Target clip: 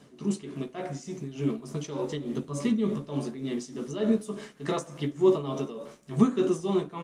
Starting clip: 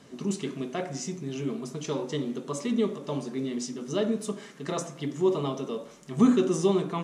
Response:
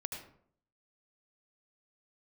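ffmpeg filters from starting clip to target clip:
-filter_complex "[0:a]asplit=2[a][b];[b]adelay=14,volume=-7dB[c];[a][c]amix=inputs=2:normalize=0,tremolo=f=3.4:d=0.71,asplit=3[d][e][f];[d]afade=t=out:st=2.36:d=0.02[g];[e]asubboost=boost=3.5:cutoff=240,afade=t=in:st=2.36:d=0.02,afade=t=out:st=3.07:d=0.02[h];[f]afade=t=in:st=3.07:d=0.02[i];[g][h][i]amix=inputs=3:normalize=0,dynaudnorm=f=270:g=9:m=3dB" -ar 48000 -c:a libopus -b:a 32k

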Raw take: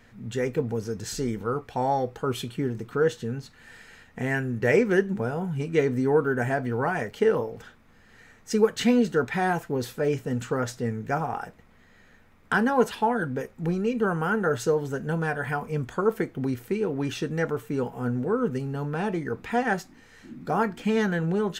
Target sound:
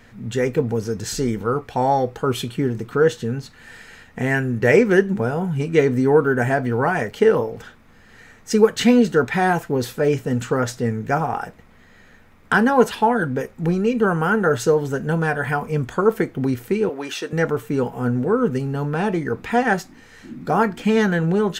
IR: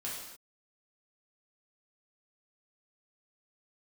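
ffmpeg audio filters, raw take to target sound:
-filter_complex "[0:a]asettb=1/sr,asplit=3[a][b][c];[a]atrim=end=16.894[d];[b]atrim=start=16.89:end=17.33,asetpts=PTS-STARTPTS,afade=t=in:d=0.004:c=qsin,afade=t=out:st=0.436:d=0.004:c=qsin,highpass=480[e];[c]atrim=start=17.326[f];[d][e]acrossfade=d=0.004:c1=hsin:c2=qsin[g];[g][f]acrossfade=d=0.004:c1=qsin:c2=hsin,volume=6.5dB"

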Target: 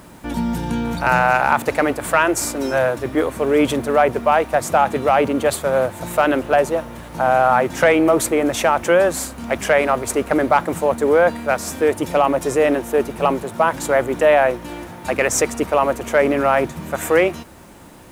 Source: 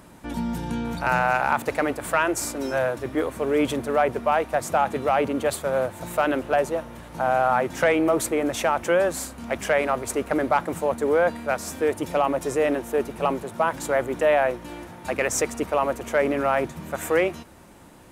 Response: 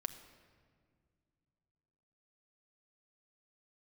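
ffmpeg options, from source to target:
-af "acrusher=bits=9:mix=0:aa=0.000001,volume=6dB"

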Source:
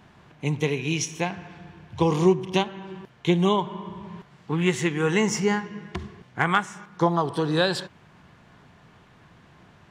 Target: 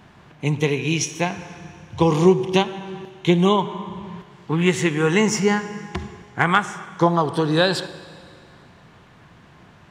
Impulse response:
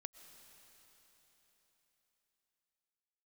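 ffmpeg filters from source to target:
-filter_complex "[0:a]asplit=2[a][b];[1:a]atrim=start_sample=2205,asetrate=83790,aresample=44100[c];[b][c]afir=irnorm=-1:irlink=0,volume=9.5dB[d];[a][d]amix=inputs=2:normalize=0,volume=-1dB"

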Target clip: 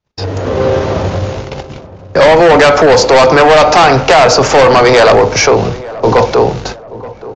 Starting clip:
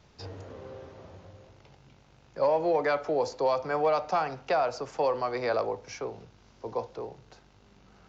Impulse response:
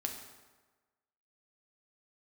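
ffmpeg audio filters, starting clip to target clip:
-filter_complex "[0:a]agate=range=-41dB:threshold=-54dB:ratio=16:detection=peak,dynaudnorm=f=160:g=7:m=13dB,atempo=1.1,aresample=16000,asoftclip=type=hard:threshold=-13.5dB,aresample=44100,apsyclip=24.5dB,asplit=2[a][b];[b]adelay=879,lowpass=f=1.1k:p=1,volume=-17dB,asplit=2[c][d];[d]adelay=879,lowpass=f=1.1k:p=1,volume=0.44,asplit=2[e][f];[f]adelay=879,lowpass=f=1.1k:p=1,volume=0.44,asplit=2[g][h];[h]adelay=879,lowpass=f=1.1k:p=1,volume=0.44[i];[c][e][g][i]amix=inputs=4:normalize=0[j];[a][j]amix=inputs=2:normalize=0,volume=-3dB"

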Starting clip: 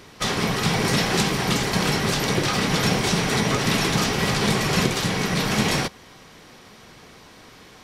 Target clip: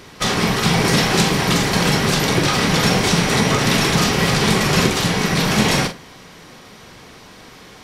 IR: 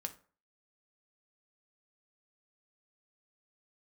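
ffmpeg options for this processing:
-filter_complex "[0:a]asplit=2[a][b];[1:a]atrim=start_sample=2205,adelay=42[c];[b][c]afir=irnorm=-1:irlink=0,volume=-6dB[d];[a][d]amix=inputs=2:normalize=0,volume=4.5dB"

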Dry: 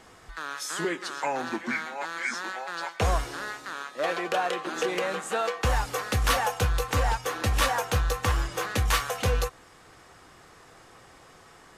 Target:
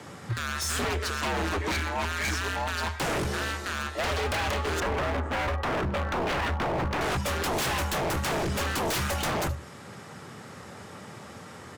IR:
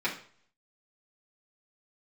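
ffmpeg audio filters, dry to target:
-filter_complex "[0:a]acontrast=22,aeval=exprs='0.398*(cos(1*acos(clip(val(0)/0.398,-1,1)))-cos(1*PI/2))+0.0562*(cos(4*acos(clip(val(0)/0.398,-1,1)))-cos(4*PI/2))+0.0224*(cos(5*acos(clip(val(0)/0.398,-1,1)))-cos(5*PI/2))+0.0631*(cos(6*acos(clip(val(0)/0.398,-1,1)))-cos(6*PI/2))+0.0355*(cos(7*acos(clip(val(0)/0.398,-1,1)))-cos(7*PI/2))':c=same,asettb=1/sr,asplit=3[a][b][c];[a]atrim=end=4.804[d];[b]atrim=start=4.8:end=7.01,asetpts=PTS-STARTPTS,afade=t=in:d=0.004:c=qsin,afade=t=out:st=2.206:d=0.004:c=qsin,lowpass=1.2k[e];[c]atrim=start=7.006[f];[d][e]acrossfade=d=0.004:c1=hsin:c2=qsin[g];[g][f]acrossfade=d=0.004:c1=qsin:c2=hsin,asoftclip=type=tanh:threshold=-15.5dB,aecho=1:1:75:0.112,acompressor=threshold=-30dB:ratio=2,lowshelf=f=260:g=9.5,afreqshift=76,aeval=exprs='0.0422*(abs(mod(val(0)/0.0422+3,4)-2)-1)':c=same,volume=4.5dB"

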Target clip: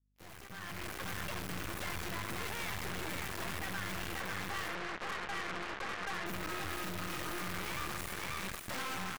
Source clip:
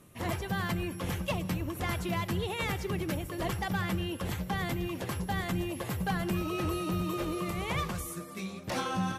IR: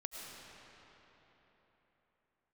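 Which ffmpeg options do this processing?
-filter_complex "[0:a]acrusher=bits=5:mix=0:aa=0.000001,asettb=1/sr,asplit=3[a][b][c];[a]atrim=end=4.154[d];[b]atrim=start=4.15:end=6.26,asetpts=PTS-STARTPTS,afade=t=in:d=0.004:c=qsin,afade=t=out:st=2.106:d=0.004:c=qsin,highpass=270,equalizer=f=270:t=q:w=4:g=-8,equalizer=f=450:t=q:w=4:g=7,equalizer=f=1.2k:t=q:w=4:g=6,lowpass=f=2.3k:w=0.5412,lowpass=f=2.3k:w=1.3066[e];[c]atrim=start=6.256[f];[d][e]acrossfade=d=0.004:c1=hsin:c2=qsin[g];[g][f]acrossfade=d=0.004:c1=qsin:c2=hsin,aecho=1:1:537:0.596[h];[1:a]atrim=start_sample=2205,afade=t=out:st=0.16:d=0.01,atrim=end_sample=7497,asetrate=79380,aresample=44100[i];[h][i]afir=irnorm=-1:irlink=0,aeval=exprs='(tanh(158*val(0)+0.7)-tanh(0.7))/158':c=same,aeval=exprs='val(0)+0.000562*(sin(2*PI*50*n/s)+sin(2*PI*2*50*n/s)/2+sin(2*PI*3*50*n/s)/3+sin(2*PI*4*50*n/s)/4+sin(2*PI*5*50*n/s)/5)':c=same,aeval=exprs='0.0112*(cos(1*acos(clip(val(0)/0.0112,-1,1)))-cos(1*PI/2))+0.00251*(cos(7*acos(clip(val(0)/0.0112,-1,1)))-cos(7*PI/2))':c=same,dynaudnorm=f=290:g=5:m=12dB,adynamicequalizer=threshold=0.002:dfrequency=1700:dqfactor=0.89:tfrequency=1700:tqfactor=0.89:attack=5:release=100:ratio=0.375:range=3.5:mode=boostabove:tftype=bell,volume=-5.5dB"

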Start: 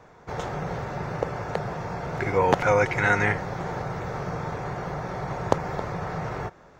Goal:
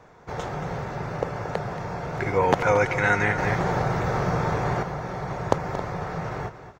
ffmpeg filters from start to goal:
-filter_complex "[0:a]aecho=1:1:228:0.251,asettb=1/sr,asplit=3[a][b][c];[a]atrim=end=3.384[d];[b]atrim=start=3.38:end=4.83,asetpts=PTS-STARTPTS,afade=t=in:d=0.004:c=qsin,afade=t=out:st=1.446:d=0.004:c=qsin,acontrast=64[e];[c]atrim=start=4.826[f];[d][e]acrossfade=d=0.004:c1=hsin:c2=qsin[g];[g][f]acrossfade=d=0.004:c1=qsin:c2=hsin"

